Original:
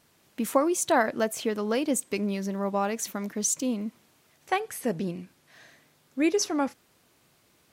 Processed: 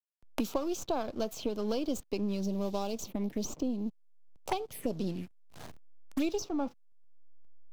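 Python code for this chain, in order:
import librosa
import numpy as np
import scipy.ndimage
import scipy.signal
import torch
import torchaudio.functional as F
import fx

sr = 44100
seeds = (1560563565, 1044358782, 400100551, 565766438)

y = np.where(x < 0.0, 10.0 ** (-7.0 / 20.0) * x, x)
y = fx.env_phaser(y, sr, low_hz=300.0, high_hz=1900.0, full_db=-30.0)
y = fx.backlash(y, sr, play_db=-49.5)
y = fx.peak_eq(y, sr, hz=1600.0, db=-8.5, octaves=1.0, at=(2.41, 4.91))
y = fx.band_squash(y, sr, depth_pct=100)
y = F.gain(torch.from_numpy(y), -2.0).numpy()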